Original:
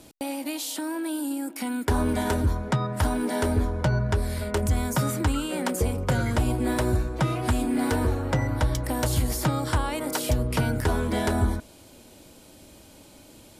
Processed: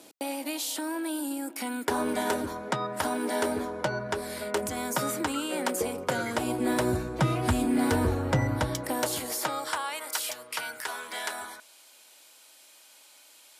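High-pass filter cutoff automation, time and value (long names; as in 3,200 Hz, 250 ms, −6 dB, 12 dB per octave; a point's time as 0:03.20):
0:06.32 310 Hz
0:07.38 79 Hz
0:08.46 79 Hz
0:08.92 280 Hz
0:10.12 1,200 Hz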